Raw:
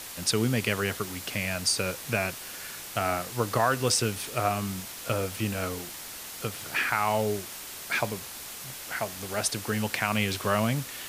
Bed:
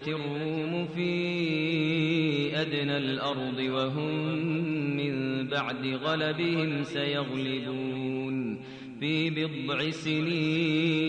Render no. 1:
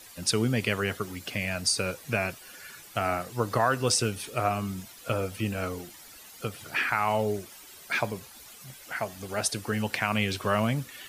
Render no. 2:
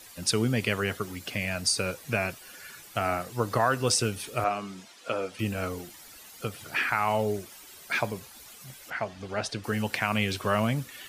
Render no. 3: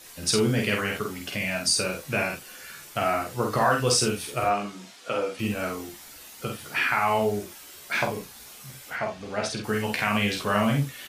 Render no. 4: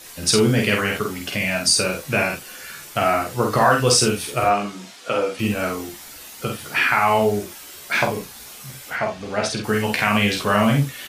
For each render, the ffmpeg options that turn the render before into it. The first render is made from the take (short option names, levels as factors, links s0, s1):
-af "afftdn=nr=12:nf=-41"
-filter_complex "[0:a]asettb=1/sr,asplit=3[s0][s1][s2];[s0]atrim=end=4.444[s3];[s1]atrim=start=4.44:end=5.39,asetpts=PTS-STARTPTS,afade=t=in:d=0.004:c=qsin,afade=t=out:st=0.946:d=0.004:c=qsin,highpass=270,lowpass=6500[s4];[s2]atrim=start=5.386[s5];[s3][s4]acrossfade=d=0.004:c1=hsin:c2=qsin[s6];[s6][s5]acrossfade=d=0.004:c1=qsin:c2=hsin,asettb=1/sr,asplit=3[s7][s8][s9];[s7]atrim=end=8.904[s10];[s8]atrim=start=8.9:end=9.64,asetpts=PTS-STARTPTS,afade=t=in:d=0.004:c=qsin,afade=t=out:st=0.736:d=0.004:c=qsin,lowpass=4500[s11];[s9]atrim=start=9.636[s12];[s10][s11]acrossfade=d=0.004:c1=hsin:c2=qsin[s13];[s13][s12]acrossfade=d=0.004:c1=qsin:c2=hsin"
-filter_complex "[0:a]asplit=2[s0][s1];[s1]adelay=49,volume=0.668[s2];[s0][s2]amix=inputs=2:normalize=0,asplit=2[s3][s4];[s4]aecho=0:1:14|37:0.531|0.335[s5];[s3][s5]amix=inputs=2:normalize=0"
-af "volume=2,alimiter=limit=0.708:level=0:latency=1"